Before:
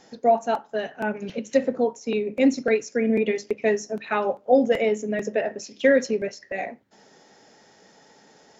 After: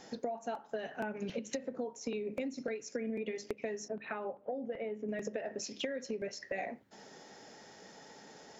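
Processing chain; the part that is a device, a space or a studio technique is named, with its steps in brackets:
serial compression, peaks first (downward compressor 10 to 1, threshold −28 dBFS, peak gain reduction 16 dB; downward compressor 3 to 1, threshold −36 dBFS, peak gain reduction 8.5 dB)
0:03.88–0:05.09: high-frequency loss of the air 390 metres

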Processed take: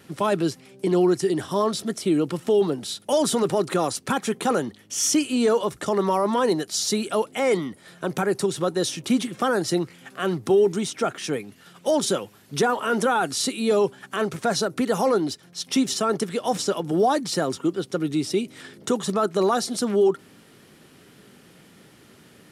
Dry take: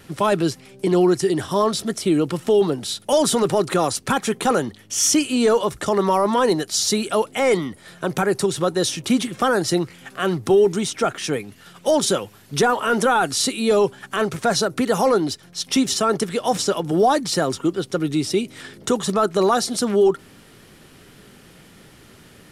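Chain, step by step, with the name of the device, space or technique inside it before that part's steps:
filter by subtraction (in parallel: low-pass filter 210 Hz 12 dB per octave + polarity inversion)
on the sum: level −4.5 dB

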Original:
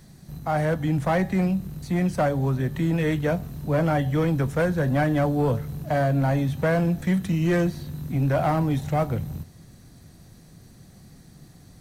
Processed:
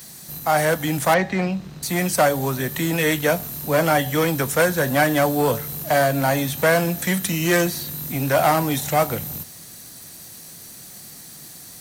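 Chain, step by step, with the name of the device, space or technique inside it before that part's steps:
turntable without a phono preamp (RIAA equalisation recording; white noise bed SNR 30 dB)
0:01.14–0:01.83: high-frequency loss of the air 160 metres
level +7.5 dB

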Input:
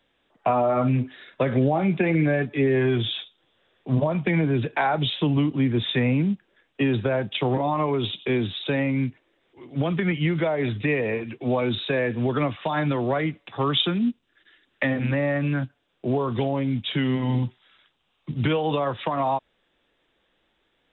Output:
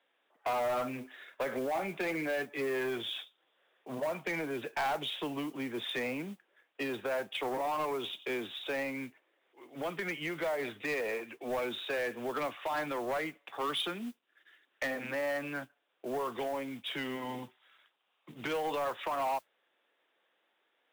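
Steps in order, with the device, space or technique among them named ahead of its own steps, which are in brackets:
carbon microphone (band-pass filter 500–2,900 Hz; soft clipping −24.5 dBFS, distortion −12 dB; noise that follows the level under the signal 22 dB)
level −3.5 dB

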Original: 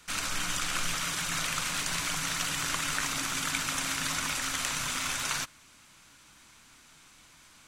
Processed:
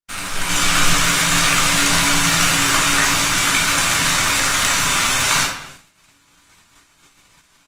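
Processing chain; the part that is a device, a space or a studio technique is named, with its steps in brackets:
speakerphone in a meeting room (convolution reverb RT60 0.65 s, pre-delay 9 ms, DRR −3 dB; far-end echo of a speakerphone 220 ms, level −18 dB; automatic gain control gain up to 9.5 dB; noise gate −40 dBFS, range −47 dB; level +2.5 dB; Opus 32 kbit/s 48,000 Hz)

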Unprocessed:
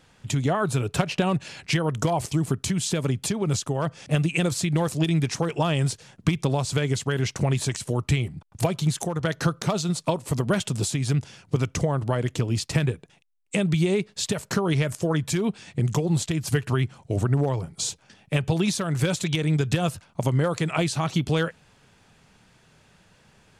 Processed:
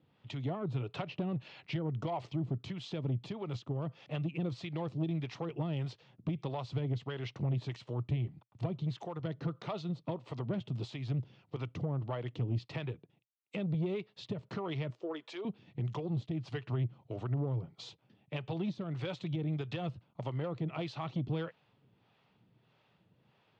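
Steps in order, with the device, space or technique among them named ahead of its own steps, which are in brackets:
0:14.90–0:15.45: high-pass filter 340 Hz 24 dB per octave
guitar amplifier with harmonic tremolo (two-band tremolo in antiphase 1.6 Hz, depth 70%, crossover 470 Hz; soft clipping −20 dBFS, distortion −15 dB; loudspeaker in its box 110–3,700 Hz, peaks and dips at 120 Hz +7 dB, 320 Hz +3 dB, 1,600 Hz −8 dB, 2,300 Hz −3 dB)
level −8 dB

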